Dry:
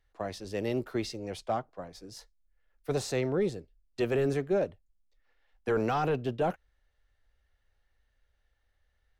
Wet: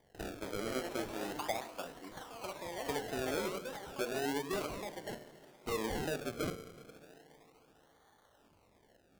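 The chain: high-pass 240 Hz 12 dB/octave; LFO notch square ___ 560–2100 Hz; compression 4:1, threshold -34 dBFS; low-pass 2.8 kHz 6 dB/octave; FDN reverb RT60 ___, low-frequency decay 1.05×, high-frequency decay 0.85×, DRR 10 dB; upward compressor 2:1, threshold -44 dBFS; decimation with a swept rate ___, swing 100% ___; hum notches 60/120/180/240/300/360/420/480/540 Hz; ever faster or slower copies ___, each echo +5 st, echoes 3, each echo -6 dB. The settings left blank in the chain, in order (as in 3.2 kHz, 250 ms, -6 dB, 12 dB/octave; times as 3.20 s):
2.8 Hz, 1.9 s, 33×, 0.34 Hz, 276 ms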